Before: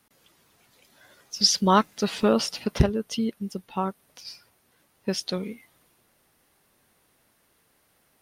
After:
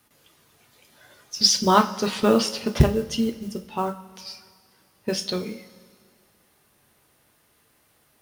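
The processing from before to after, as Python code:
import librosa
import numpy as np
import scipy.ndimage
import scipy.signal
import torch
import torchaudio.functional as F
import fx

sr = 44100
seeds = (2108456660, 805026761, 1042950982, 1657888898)

y = fx.mod_noise(x, sr, seeds[0], snr_db=27)
y = fx.rev_double_slope(y, sr, seeds[1], early_s=0.31, late_s=2.0, knee_db=-17, drr_db=5.0)
y = fx.quant_dither(y, sr, seeds[2], bits=12, dither='none')
y = F.gain(torch.from_numpy(y), 1.5).numpy()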